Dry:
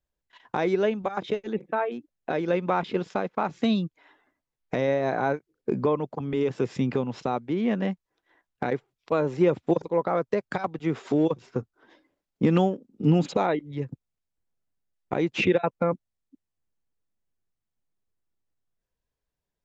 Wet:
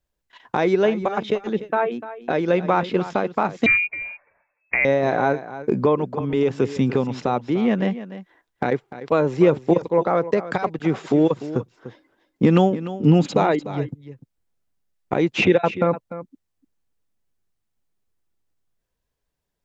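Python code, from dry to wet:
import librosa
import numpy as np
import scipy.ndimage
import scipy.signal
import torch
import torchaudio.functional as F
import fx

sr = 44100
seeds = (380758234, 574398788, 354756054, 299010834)

y = x + 10.0 ** (-14.0 / 20.0) * np.pad(x, (int(297 * sr / 1000.0), 0))[:len(x)]
y = fx.freq_invert(y, sr, carrier_hz=2600, at=(3.66, 4.85))
y = y * 10.0 ** (5.5 / 20.0)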